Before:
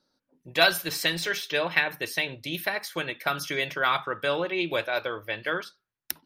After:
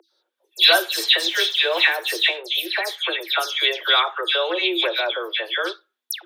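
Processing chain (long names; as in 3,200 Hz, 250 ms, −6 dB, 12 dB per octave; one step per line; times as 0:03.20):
0:01.27–0:02.38: mu-law and A-law mismatch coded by mu
parametric band 3,500 Hz +13 dB 0.36 octaves
all-pass dispersion lows, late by 116 ms, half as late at 2,500 Hz
mains hum 50 Hz, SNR 11 dB
Chebyshev high-pass filter 330 Hz, order 10
boost into a limiter +6.5 dB
level −2 dB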